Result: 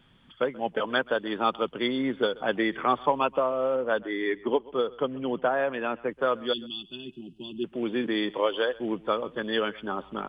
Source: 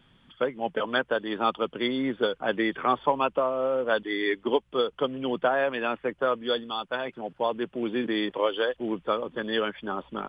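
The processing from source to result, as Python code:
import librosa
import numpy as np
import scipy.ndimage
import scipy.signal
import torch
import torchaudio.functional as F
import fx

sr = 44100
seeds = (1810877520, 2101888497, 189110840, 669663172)

y = fx.air_absorb(x, sr, metres=310.0, at=(3.76, 6.11))
y = fx.spec_box(y, sr, start_s=6.53, length_s=1.12, low_hz=390.0, high_hz=2500.0, gain_db=-30)
y = y + 10.0 ** (-22.0 / 20.0) * np.pad(y, (int(132 * sr / 1000.0), 0))[:len(y)]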